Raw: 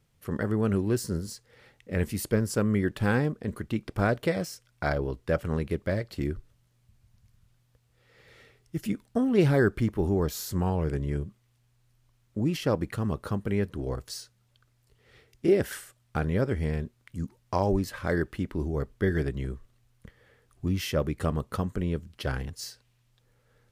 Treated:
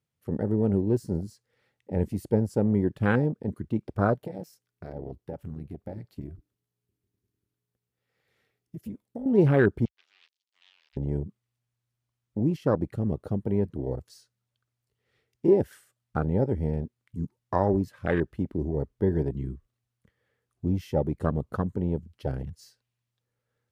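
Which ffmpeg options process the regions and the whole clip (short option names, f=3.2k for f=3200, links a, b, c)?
-filter_complex "[0:a]asettb=1/sr,asplit=3[a][b][c];[a]atrim=end=4.144[d];[b]atrim=start=4.14:end=9.26,asetpts=PTS-STARTPTS,afade=t=in:d=0.004:c=qsin,afade=t=out:st=5.116:d=0.004:c=qsin,equalizer=f=13k:w=1.3:g=8,acompressor=threshold=-29dB:ratio=16:attack=3.2:release=140:knee=1:detection=peak,tremolo=f=300:d=0.75[e];[c]atrim=start=9.256[f];[d][e]acrossfade=d=0.004:c1=hsin:c2=qsin[g];[g][f]acrossfade=d=0.004:c1=qsin:c2=hsin,asettb=1/sr,asplit=3[h][i][j];[h]atrim=end=9.854[k];[i]atrim=start=9.85:end=10.97,asetpts=PTS-STARTPTS,afade=t=in:d=0.004:c=qsin,afade=t=out:st=1.116:d=0.004:c=qsin,acrusher=bits=3:mix=0:aa=0.5,asuperpass=centerf=3800:order=4:qfactor=1.4[l];[j]atrim=start=10.966[m];[k][l]acrossfade=d=0.004:c1=hsin:c2=qsin[n];[n][m]acrossfade=d=0.004:c1=qsin:c2=hsin,afwtdn=0.0316,highpass=76,volume=2dB"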